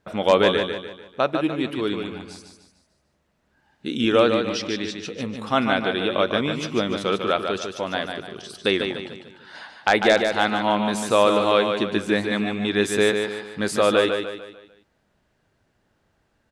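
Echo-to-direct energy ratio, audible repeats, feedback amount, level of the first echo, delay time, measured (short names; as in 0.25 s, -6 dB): -5.0 dB, 4, 42%, -6.0 dB, 0.148 s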